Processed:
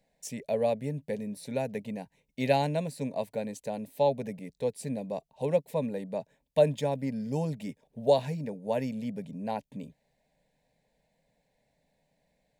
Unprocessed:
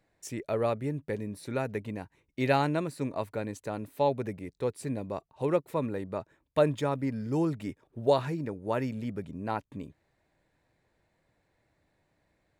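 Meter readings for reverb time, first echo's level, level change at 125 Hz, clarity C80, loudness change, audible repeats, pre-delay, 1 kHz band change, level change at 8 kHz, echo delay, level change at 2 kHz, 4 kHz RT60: no reverb audible, no echo audible, −1.0 dB, no reverb audible, 0.0 dB, no echo audible, no reverb audible, −1.5 dB, +2.0 dB, no echo audible, −4.0 dB, no reverb audible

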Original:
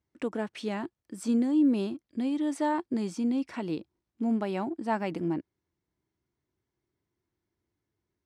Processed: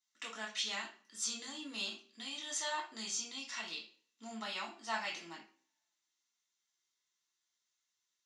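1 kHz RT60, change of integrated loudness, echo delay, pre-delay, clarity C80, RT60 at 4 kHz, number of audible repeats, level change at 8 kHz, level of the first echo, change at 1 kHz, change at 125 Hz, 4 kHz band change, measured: 0.40 s, −9.5 dB, no echo audible, 3 ms, 13.0 dB, 0.40 s, no echo audible, +9.5 dB, no echo audible, −8.0 dB, −24.0 dB, +9.0 dB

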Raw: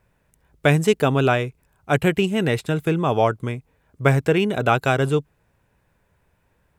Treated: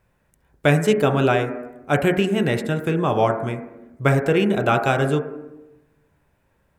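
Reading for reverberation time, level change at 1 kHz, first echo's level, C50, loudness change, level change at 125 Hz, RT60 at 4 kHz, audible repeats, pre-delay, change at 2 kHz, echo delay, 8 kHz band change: 1.0 s, +0.5 dB, no echo audible, 9.0 dB, +0.5 dB, −1.0 dB, 0.75 s, no echo audible, 4 ms, 0.0 dB, no echo audible, −1.0 dB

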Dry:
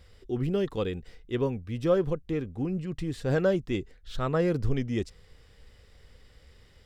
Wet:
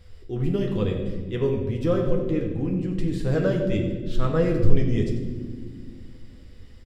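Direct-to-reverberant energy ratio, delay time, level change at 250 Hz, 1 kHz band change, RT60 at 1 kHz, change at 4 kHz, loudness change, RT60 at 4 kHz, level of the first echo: 0.5 dB, 92 ms, +5.5 dB, +0.5 dB, 1.3 s, +1.5 dB, +4.0 dB, 1.1 s, −11.5 dB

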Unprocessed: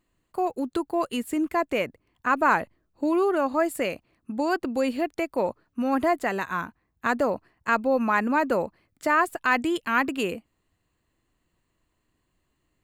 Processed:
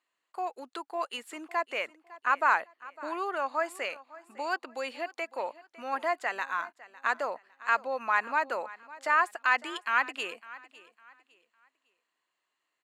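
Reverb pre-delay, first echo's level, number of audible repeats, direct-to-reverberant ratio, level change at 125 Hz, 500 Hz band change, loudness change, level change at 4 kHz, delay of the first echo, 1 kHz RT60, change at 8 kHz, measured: no reverb audible, −19.0 dB, 2, no reverb audible, below −25 dB, −10.0 dB, −5.0 dB, −2.0 dB, 555 ms, no reverb audible, −7.0 dB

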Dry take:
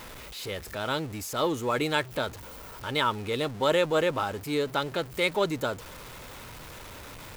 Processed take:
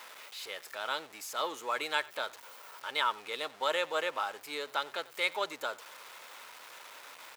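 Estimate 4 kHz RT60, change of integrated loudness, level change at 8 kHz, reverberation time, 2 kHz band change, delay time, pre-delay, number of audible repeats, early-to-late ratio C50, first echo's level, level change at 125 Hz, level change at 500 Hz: no reverb audible, −6.0 dB, −5.0 dB, no reverb audible, −3.0 dB, 91 ms, no reverb audible, 1, no reverb audible, −22.0 dB, below −30 dB, −10.0 dB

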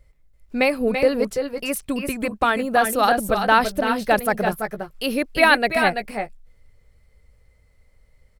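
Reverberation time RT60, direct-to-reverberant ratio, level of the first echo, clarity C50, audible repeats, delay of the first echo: no reverb audible, no reverb audible, −7.0 dB, no reverb audible, 1, 335 ms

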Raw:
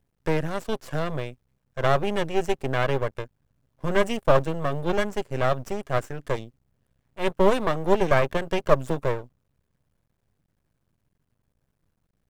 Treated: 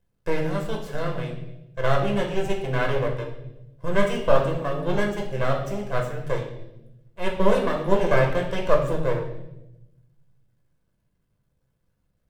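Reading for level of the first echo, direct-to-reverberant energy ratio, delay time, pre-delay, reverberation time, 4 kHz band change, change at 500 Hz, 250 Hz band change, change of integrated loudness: no echo audible, −0.5 dB, no echo audible, 6 ms, 0.90 s, −0.5 dB, +0.5 dB, +1.0 dB, +0.5 dB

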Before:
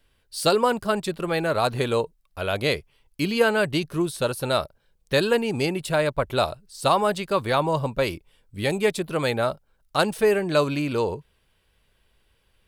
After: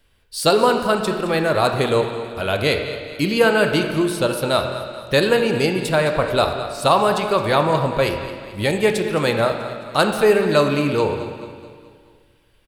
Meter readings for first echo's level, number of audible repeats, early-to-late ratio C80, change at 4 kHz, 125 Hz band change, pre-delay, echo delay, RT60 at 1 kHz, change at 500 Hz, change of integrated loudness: −14.0 dB, 4, 6.5 dB, +5.0 dB, +4.5 dB, 23 ms, 216 ms, 2.1 s, +5.5 dB, +5.0 dB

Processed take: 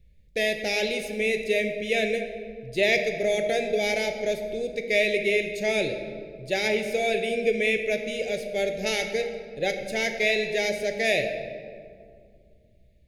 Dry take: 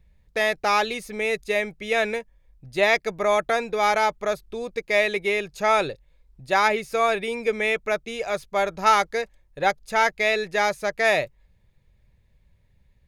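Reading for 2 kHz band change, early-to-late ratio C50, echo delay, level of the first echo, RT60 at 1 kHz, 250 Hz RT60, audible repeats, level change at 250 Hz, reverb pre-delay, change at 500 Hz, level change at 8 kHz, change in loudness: −2.5 dB, 7.0 dB, no echo audible, no echo audible, 2.0 s, 3.1 s, no echo audible, +2.0 dB, 14 ms, −0.5 dB, 0.0 dB, −2.5 dB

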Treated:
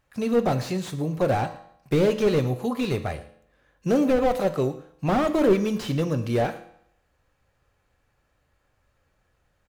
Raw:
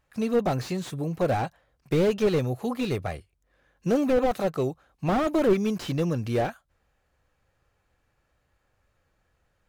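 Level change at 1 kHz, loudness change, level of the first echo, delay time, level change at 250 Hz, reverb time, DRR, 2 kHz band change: +2.0 dB, +2.0 dB, −19.5 dB, 112 ms, +2.0 dB, 0.70 s, 8.5 dB, +2.0 dB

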